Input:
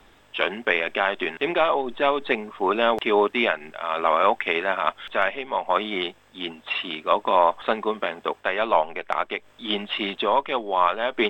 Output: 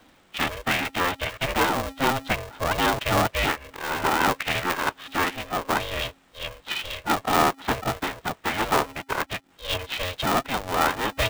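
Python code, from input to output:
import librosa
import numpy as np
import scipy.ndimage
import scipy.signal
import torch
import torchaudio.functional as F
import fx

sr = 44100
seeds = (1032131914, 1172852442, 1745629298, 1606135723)

y = fx.pitch_keep_formants(x, sr, semitones=-1.5)
y = y * np.sign(np.sin(2.0 * np.pi * 270.0 * np.arange(len(y)) / sr))
y = y * librosa.db_to_amplitude(-1.5)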